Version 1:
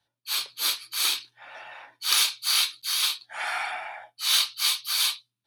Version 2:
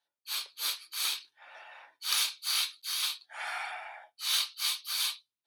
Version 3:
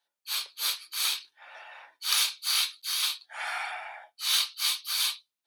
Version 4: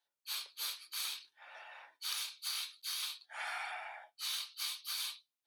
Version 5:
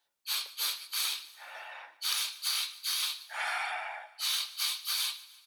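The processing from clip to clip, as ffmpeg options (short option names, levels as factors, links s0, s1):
-af "highpass=410,volume=0.447"
-af "lowshelf=f=220:g=-7.5,volume=1.5"
-af "acompressor=threshold=0.0282:ratio=6,volume=0.531"
-af "aecho=1:1:148|296|444|592:0.112|0.0606|0.0327|0.0177,volume=2.37"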